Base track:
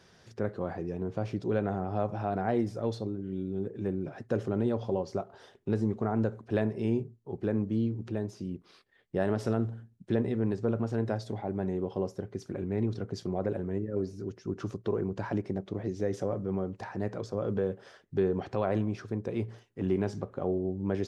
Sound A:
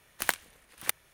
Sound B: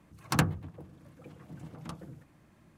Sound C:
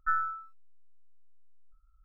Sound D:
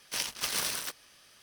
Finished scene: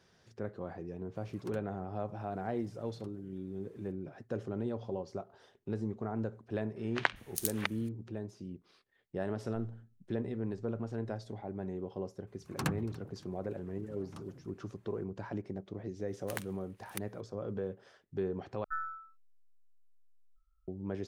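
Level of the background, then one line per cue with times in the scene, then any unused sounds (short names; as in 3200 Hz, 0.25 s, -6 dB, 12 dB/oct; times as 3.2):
base track -7.5 dB
1.15 add B -17 dB + three-band squash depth 70%
6.76 add A -0.5 dB + three bands offset in time mids, lows, highs 0.16/0.4 s, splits 220/4200 Hz
9.48 add C -13.5 dB + elliptic low-pass 700 Hz
12.27 add B -8 dB + feedback echo 0.284 s, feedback 40%, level -22 dB
16.08 add A -13.5 dB
18.64 replace with C -9 dB
not used: D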